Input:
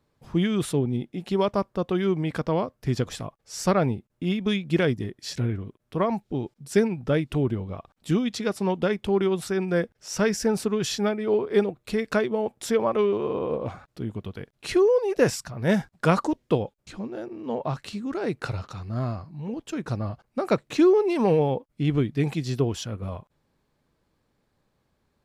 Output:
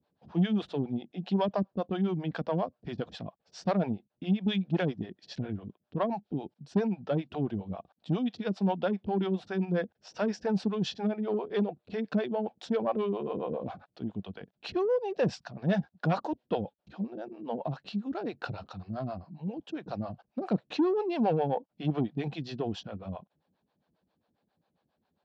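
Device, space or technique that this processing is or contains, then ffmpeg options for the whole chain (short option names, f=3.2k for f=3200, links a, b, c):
guitar amplifier with harmonic tremolo: -filter_complex "[0:a]asettb=1/sr,asplit=3[a][b][c];[a]atrim=end=21.494[d];[b]atrim=start=21.49:end=22.12,asetpts=PTS-STARTPTS,afade=t=in:d=0.004:c=qsin,afade=t=out:st=0.626:d=0.004:c=qsin,equalizer=f=880:t=o:w=1.6:g=5.5[e];[c]atrim=start=22.116[f];[d][e]acrossfade=d=0.004:c1=hsin:c2=qsin[g];[g][f]acrossfade=d=0.004:c1=qsin:c2=hsin,acrossover=split=410[h][i];[h]aeval=exprs='val(0)*(1-1/2+1/2*cos(2*PI*7.4*n/s))':c=same[j];[i]aeval=exprs='val(0)*(1-1/2-1/2*cos(2*PI*7.4*n/s))':c=same[k];[j][k]amix=inputs=2:normalize=0,asoftclip=type=tanh:threshold=-19dB,highpass=100,equalizer=f=120:t=q:w=4:g=-7,equalizer=f=190:t=q:w=4:g=5,equalizer=f=400:t=q:w=4:g=-3,equalizer=f=720:t=q:w=4:g=6,equalizer=f=1.2k:t=q:w=4:g=-5,equalizer=f=2.1k:t=q:w=4:g=-8,lowpass=f=4.4k:w=0.5412,lowpass=f=4.4k:w=1.3066"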